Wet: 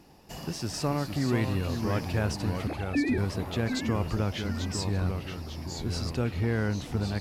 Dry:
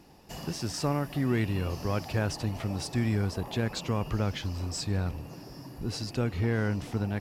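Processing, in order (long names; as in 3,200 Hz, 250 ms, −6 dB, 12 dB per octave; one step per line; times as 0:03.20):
0:02.67–0:03.18: three sine waves on the formant tracks
delay with pitch and tempo change per echo 381 ms, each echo −2 semitones, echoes 2, each echo −6 dB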